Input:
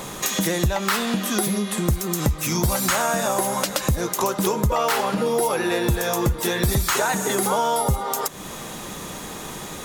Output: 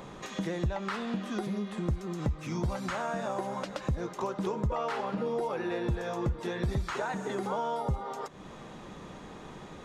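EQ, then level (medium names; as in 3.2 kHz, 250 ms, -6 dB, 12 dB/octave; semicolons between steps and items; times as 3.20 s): tape spacing loss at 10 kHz 30 dB; treble shelf 5.8 kHz +7.5 dB; -8.5 dB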